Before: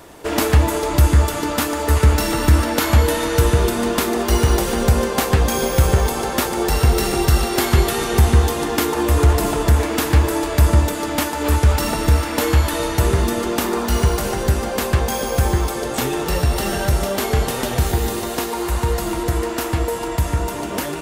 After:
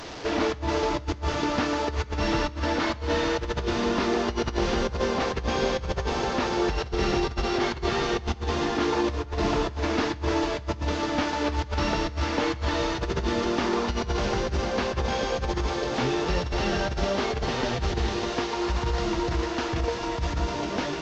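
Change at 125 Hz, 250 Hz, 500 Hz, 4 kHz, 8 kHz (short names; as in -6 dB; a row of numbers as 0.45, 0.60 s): -13.5, -6.0, -6.0, -5.5, -15.0 dB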